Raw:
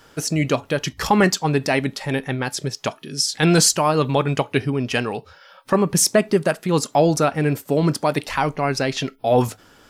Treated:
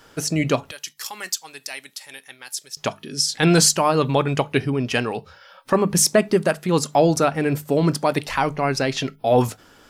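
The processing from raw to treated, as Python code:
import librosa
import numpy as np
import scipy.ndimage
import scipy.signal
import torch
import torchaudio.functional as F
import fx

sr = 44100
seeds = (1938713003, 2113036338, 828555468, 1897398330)

y = fx.hum_notches(x, sr, base_hz=50, count=4)
y = fx.differentiator(y, sr, at=(0.71, 2.77))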